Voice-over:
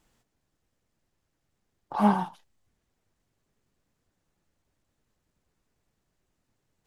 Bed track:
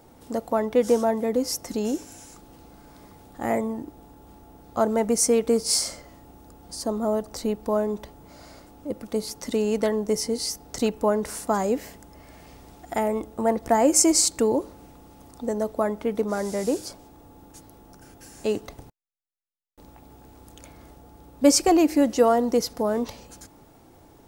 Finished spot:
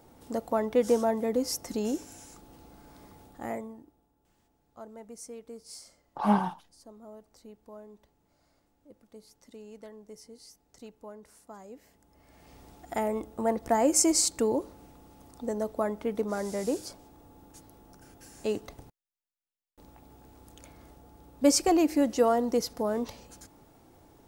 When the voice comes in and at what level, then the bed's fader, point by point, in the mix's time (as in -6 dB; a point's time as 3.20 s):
4.25 s, -2.0 dB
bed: 3.23 s -4 dB
4.09 s -23.5 dB
11.69 s -23.5 dB
12.60 s -5 dB